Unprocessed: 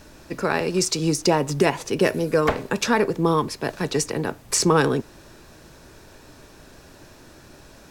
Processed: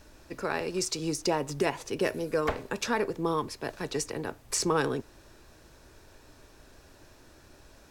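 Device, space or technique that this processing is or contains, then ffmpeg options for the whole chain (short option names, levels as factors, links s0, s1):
low shelf boost with a cut just above: -af "lowshelf=f=110:g=4.5,equalizer=f=170:t=o:w=0.96:g=-6,volume=0.398"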